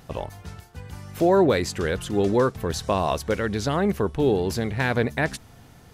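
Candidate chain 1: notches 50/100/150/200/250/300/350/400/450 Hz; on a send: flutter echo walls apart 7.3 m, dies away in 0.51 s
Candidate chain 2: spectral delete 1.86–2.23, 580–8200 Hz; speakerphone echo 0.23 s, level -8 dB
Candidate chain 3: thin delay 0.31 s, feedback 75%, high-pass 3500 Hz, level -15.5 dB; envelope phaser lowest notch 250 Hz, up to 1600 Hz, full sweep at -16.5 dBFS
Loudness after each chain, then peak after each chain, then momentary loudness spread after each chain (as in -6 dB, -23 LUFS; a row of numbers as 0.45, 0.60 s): -22.5, -23.5, -25.0 LUFS; -6.0, -8.5, -11.0 dBFS; 19, 19, 20 LU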